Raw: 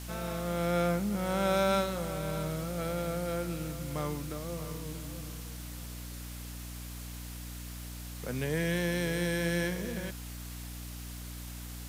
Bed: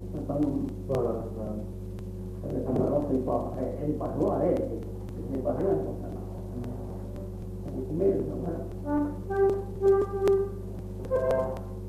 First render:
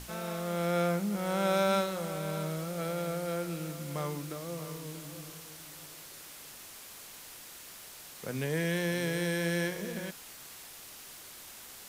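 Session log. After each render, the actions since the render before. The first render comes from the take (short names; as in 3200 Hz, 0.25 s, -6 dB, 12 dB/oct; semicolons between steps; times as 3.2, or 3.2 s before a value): notches 60/120/180/240/300 Hz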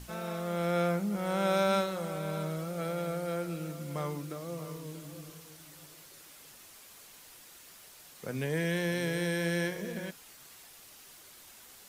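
denoiser 6 dB, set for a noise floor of -49 dBFS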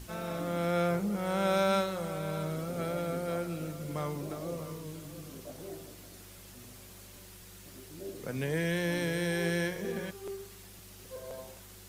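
add bed -18 dB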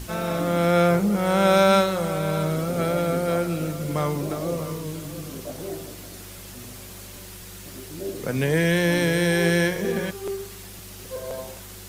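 gain +10.5 dB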